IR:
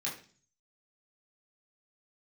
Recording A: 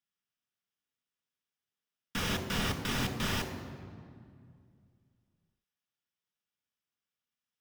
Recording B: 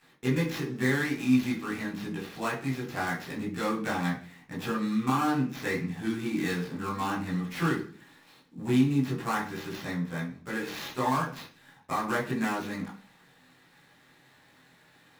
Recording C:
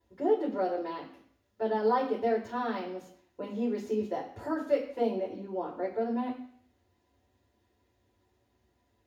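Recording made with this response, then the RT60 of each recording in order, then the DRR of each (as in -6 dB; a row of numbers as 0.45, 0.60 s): B; 2.2, 0.40, 0.60 s; 4.5, -6.0, -6.0 dB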